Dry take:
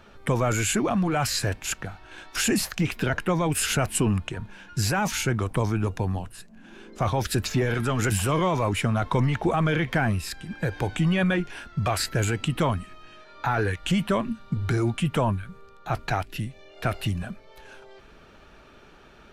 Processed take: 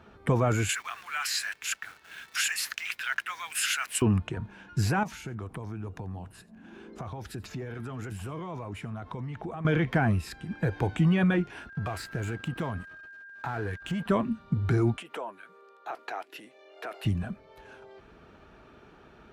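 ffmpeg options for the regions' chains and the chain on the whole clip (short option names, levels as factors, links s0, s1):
-filter_complex "[0:a]asettb=1/sr,asplit=3[s0][s1][s2];[s0]atrim=end=0.694[s3];[s1]atrim=start=0.69:end=4.02,asetpts=PTS-STARTPTS,afade=t=in:d=0.004:c=qsin,afade=t=out:st=3.326:d=0.004:c=qsin,highpass=f=1500:w=0.5412,highpass=f=1500:w=1.3066,acontrast=56,acrusher=bits=8:dc=4:mix=0:aa=0.000001[s4];[s2]atrim=start=4.016[s5];[s3][s4]acrossfade=d=0.004:c1=hsin:c2=qsin[s6];[s6][s5]acrossfade=d=0.004:c1=qsin:c2=hsin,asettb=1/sr,asplit=3[s7][s8][s9];[s7]atrim=end=5.034[s10];[s8]atrim=start=5.03:end=9.65,asetpts=PTS-STARTPTS,afade=t=in:d=0.004:c=qsin,afade=t=out:st=4.616:d=0.004:c=qsin,acompressor=threshold=0.0178:ratio=4:attack=3.2:release=140:knee=1:detection=peak,aecho=1:1:87:0.0708,atrim=end_sample=203742[s11];[s9]atrim=start=9.646[s12];[s10][s11]acrossfade=d=0.004:c1=hsin:c2=qsin[s13];[s13][s12]acrossfade=d=0.004:c1=qsin:c2=hsin,asettb=1/sr,asplit=3[s14][s15][s16];[s14]atrim=end=11.694[s17];[s15]atrim=start=11.69:end=14.06,asetpts=PTS-STARTPTS,afade=t=in:d=0.004:c=qsin,afade=t=out:st=2.366:d=0.004:c=qsin,acompressor=threshold=0.0398:ratio=2.5:attack=3.2:release=140:knee=1:detection=peak,aeval=exprs='sgn(val(0))*max(abs(val(0))-0.00708,0)':c=same,aeval=exprs='val(0)+0.00891*sin(2*PI*1600*n/s)':c=same[s18];[s16]atrim=start=14.056[s19];[s17][s18]acrossfade=d=0.004:c1=hsin:c2=qsin[s20];[s20][s19]acrossfade=d=0.004:c1=qsin:c2=hsin,asettb=1/sr,asplit=3[s21][s22][s23];[s21]atrim=end=14.964[s24];[s22]atrim=start=14.96:end=17.05,asetpts=PTS-STARTPTS,afade=t=in:d=0.004:c=qsin,afade=t=out:st=2.086:d=0.004:c=qsin,acompressor=threshold=0.0447:ratio=5:attack=3.2:release=140:knee=1:detection=peak,highpass=f=370:w=0.5412,highpass=f=370:w=1.3066[s25];[s23]atrim=start=17.046[s26];[s24][s25]acrossfade=d=0.004:c1=hsin:c2=qsin[s27];[s27][s26]acrossfade=d=0.004:c1=qsin:c2=hsin,highpass=52,highshelf=f=2200:g=-10.5,bandreject=f=560:w=12"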